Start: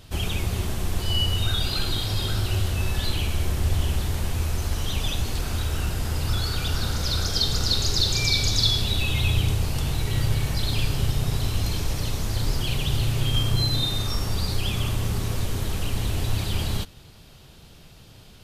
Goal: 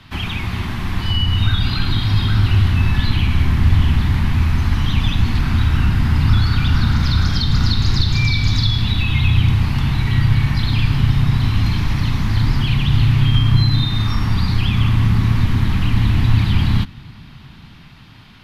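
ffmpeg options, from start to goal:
ffmpeg -i in.wav -filter_complex "[0:a]equalizer=frequency=125:width_type=o:width=1:gain=5,equalizer=frequency=250:width_type=o:width=1:gain=10,equalizer=frequency=500:width_type=o:width=1:gain=-10,equalizer=frequency=1000:width_type=o:width=1:gain=11,equalizer=frequency=2000:width_type=o:width=1:gain=11,equalizer=frequency=4000:width_type=o:width=1:gain=5,equalizer=frequency=8000:width_type=o:width=1:gain=-10,acrossover=split=140[link_01][link_02];[link_02]acompressor=threshold=-23dB:ratio=2[link_03];[link_01][link_03]amix=inputs=2:normalize=0,lowpass=12000,acrossover=split=260|1500|5100[link_04][link_05][link_06][link_07];[link_04]dynaudnorm=framelen=250:gausssize=9:maxgain=11.5dB[link_08];[link_08][link_05][link_06][link_07]amix=inputs=4:normalize=0,volume=-1dB" out.wav

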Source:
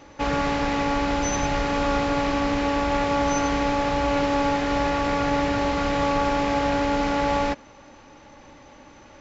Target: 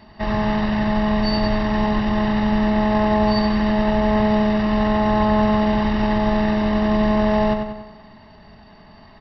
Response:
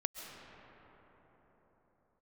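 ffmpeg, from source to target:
-filter_complex "[0:a]aecho=1:1:0.8:0.66,asetrate=33038,aresample=44100,atempo=1.33484,asplit=2[link_01][link_02];[link_02]adelay=94,lowpass=frequency=4900:poles=1,volume=-5.5dB,asplit=2[link_03][link_04];[link_04]adelay=94,lowpass=frequency=4900:poles=1,volume=0.54,asplit=2[link_05][link_06];[link_06]adelay=94,lowpass=frequency=4900:poles=1,volume=0.54,asplit=2[link_07][link_08];[link_08]adelay=94,lowpass=frequency=4900:poles=1,volume=0.54,asplit=2[link_09][link_10];[link_10]adelay=94,lowpass=frequency=4900:poles=1,volume=0.54,asplit=2[link_11][link_12];[link_12]adelay=94,lowpass=frequency=4900:poles=1,volume=0.54,asplit=2[link_13][link_14];[link_14]adelay=94,lowpass=frequency=4900:poles=1,volume=0.54[link_15];[link_01][link_03][link_05][link_07][link_09][link_11][link_13][link_15]amix=inputs=8:normalize=0"

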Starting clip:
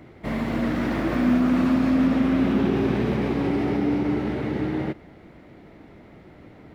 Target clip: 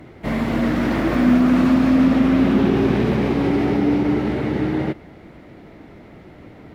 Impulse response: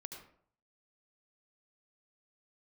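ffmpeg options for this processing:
-af "volume=5dB" -ar 44100 -c:a libvorbis -b:a 64k

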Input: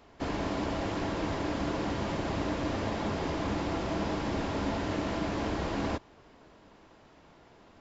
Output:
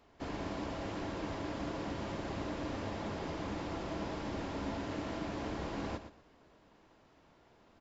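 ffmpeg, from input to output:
ffmpeg -i in.wav -af "aecho=1:1:117|234|351:0.282|0.0648|0.0149,volume=-7.5dB" out.wav

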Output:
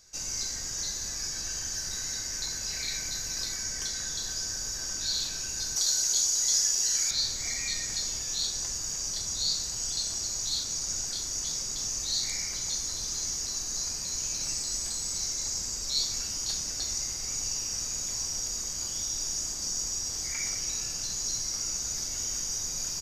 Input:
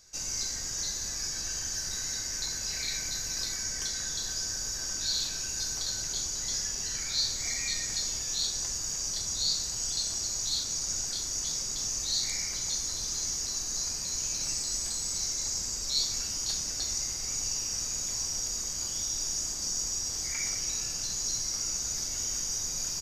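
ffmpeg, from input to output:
ffmpeg -i in.wav -filter_complex "[0:a]asettb=1/sr,asplit=3[link_01][link_02][link_03];[link_01]atrim=end=5.764[link_04];[link_02]atrim=start=5.76:end=7.11,asetpts=PTS-STARTPTS,afade=type=in:duration=0.004:curve=qsin,afade=type=out:start_time=1.346:duration=0.004:curve=qsin,bass=frequency=250:gain=-11,treble=frequency=4000:gain=9[link_05];[link_03]atrim=start=7.106[link_06];[link_04][link_05]acrossfade=duration=0.004:curve1=hsin:curve2=qsin[link_07];[link_07][link_06]acrossfade=duration=0.004:curve1=qsin:curve2=hsin" out.wav

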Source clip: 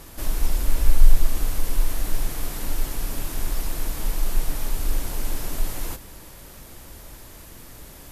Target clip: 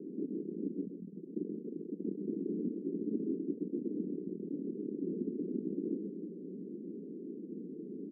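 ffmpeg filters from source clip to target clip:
ffmpeg -i in.wav -filter_complex "[0:a]acompressor=threshold=-16dB:ratio=6,asoftclip=type=tanh:threshold=-24.5dB,asuperpass=centerf=280:order=12:qfactor=1.1,asplit=2[link_01][link_02];[link_02]adelay=128.3,volume=-7dB,highshelf=frequency=4000:gain=-2.89[link_03];[link_01][link_03]amix=inputs=2:normalize=0,volume=9.5dB" out.wav

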